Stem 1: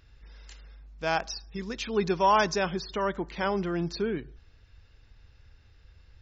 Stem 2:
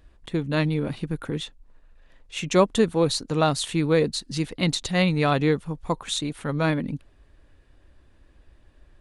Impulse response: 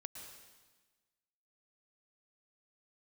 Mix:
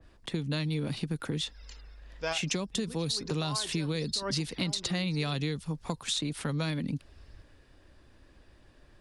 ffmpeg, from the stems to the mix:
-filter_complex "[0:a]aphaser=in_gain=1:out_gain=1:delay=2.8:decay=0.43:speed=0.64:type=sinusoidal,adelay=1200,volume=0.708[s0];[1:a]alimiter=limit=0.266:level=0:latency=1:release=385,acrossover=split=89|200|2900[s1][s2][s3][s4];[s1]acompressor=threshold=0.00112:ratio=4[s5];[s2]acompressor=threshold=0.0282:ratio=4[s6];[s3]acompressor=threshold=0.0158:ratio=4[s7];[s4]acompressor=threshold=0.0126:ratio=4[s8];[s5][s6][s7][s8]amix=inputs=4:normalize=0,adynamicequalizer=threshold=0.00708:dfrequency=2200:dqfactor=0.7:tfrequency=2200:tqfactor=0.7:attack=5:release=100:ratio=0.375:range=2:mode=boostabove:tftype=highshelf,volume=1.19,asplit=2[s9][s10];[s10]apad=whole_len=327215[s11];[s0][s11]sidechaincompress=threshold=0.00708:ratio=5:attack=6.5:release=172[s12];[s12][s9]amix=inputs=2:normalize=0,equalizer=f=5000:w=3:g=6,acompressor=threshold=0.0447:ratio=6"

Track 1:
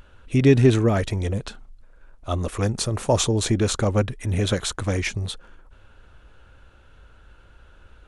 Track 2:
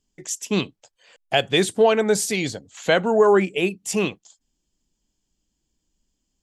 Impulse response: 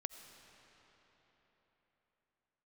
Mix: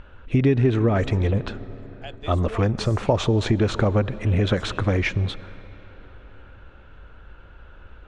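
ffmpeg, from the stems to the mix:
-filter_complex "[0:a]lowpass=2800,volume=1.33,asplit=3[s0][s1][s2];[s1]volume=0.473[s3];[1:a]lowpass=7400,adelay=700,volume=0.106[s4];[s2]apad=whole_len=314236[s5];[s4][s5]sidechaincompress=threshold=0.1:ratio=8:attack=16:release=286[s6];[2:a]atrim=start_sample=2205[s7];[s3][s7]afir=irnorm=-1:irlink=0[s8];[s0][s6][s8]amix=inputs=3:normalize=0,acompressor=threshold=0.158:ratio=4"

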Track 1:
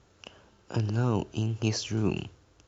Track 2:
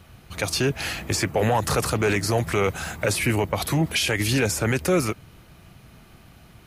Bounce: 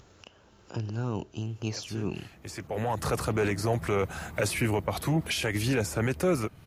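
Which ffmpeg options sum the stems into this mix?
-filter_complex "[0:a]acompressor=mode=upward:threshold=0.00891:ratio=2.5,volume=0.562,asplit=2[s0][s1];[1:a]adynamicequalizer=threshold=0.0141:dfrequency=1700:dqfactor=0.7:tfrequency=1700:tqfactor=0.7:attack=5:release=100:ratio=0.375:range=3:mode=cutabove:tftype=highshelf,adelay=1350,volume=0.596[s2];[s1]apad=whole_len=353546[s3];[s2][s3]sidechaincompress=threshold=0.00631:ratio=16:attack=16:release=817[s4];[s0][s4]amix=inputs=2:normalize=0"

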